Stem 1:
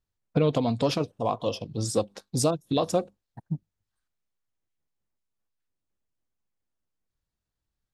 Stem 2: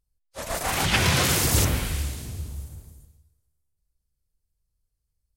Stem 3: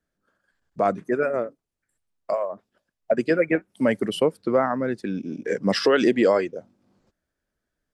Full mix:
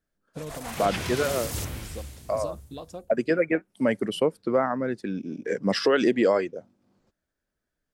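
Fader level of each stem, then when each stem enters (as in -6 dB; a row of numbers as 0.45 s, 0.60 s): -15.0 dB, -11.0 dB, -2.5 dB; 0.00 s, 0.00 s, 0.00 s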